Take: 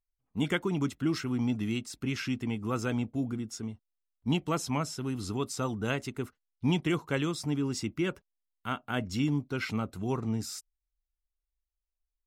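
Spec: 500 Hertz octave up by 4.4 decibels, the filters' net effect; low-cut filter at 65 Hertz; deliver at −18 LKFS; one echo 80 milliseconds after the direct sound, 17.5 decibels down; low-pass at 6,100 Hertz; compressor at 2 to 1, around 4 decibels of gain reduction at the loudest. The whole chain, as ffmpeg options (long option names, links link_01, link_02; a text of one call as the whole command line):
ffmpeg -i in.wav -af "highpass=65,lowpass=6100,equalizer=frequency=500:width_type=o:gain=6,acompressor=threshold=-29dB:ratio=2,aecho=1:1:80:0.133,volume=15.5dB" out.wav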